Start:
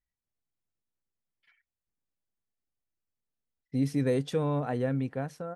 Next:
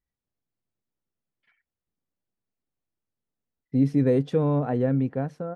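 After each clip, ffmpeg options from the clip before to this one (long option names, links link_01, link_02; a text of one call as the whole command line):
ffmpeg -i in.wav -af "lowpass=frequency=2600:poles=1,equalizer=frequency=240:width=0.33:gain=7" out.wav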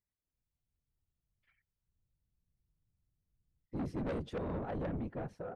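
ffmpeg -i in.wav -af "asubboost=boost=10:cutoff=58,afftfilt=real='hypot(re,im)*cos(2*PI*random(0))':imag='hypot(re,im)*sin(2*PI*random(1))':win_size=512:overlap=0.75,asoftclip=type=tanh:threshold=-31.5dB,volume=-2dB" out.wav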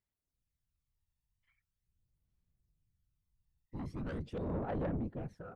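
ffmpeg -i in.wav -af "aphaser=in_gain=1:out_gain=1:delay=1.1:decay=0.53:speed=0.42:type=sinusoidal,volume=-4.5dB" out.wav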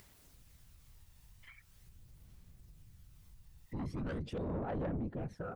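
ffmpeg -i in.wav -af "acompressor=mode=upward:threshold=-50dB:ratio=2.5,alimiter=level_in=16dB:limit=-24dB:level=0:latency=1:release=67,volume=-16dB,volume=7dB" out.wav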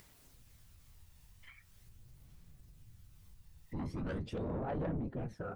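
ffmpeg -i in.wav -af "flanger=delay=6.1:depth=7.4:regen=67:speed=0.41:shape=triangular,volume=4.5dB" out.wav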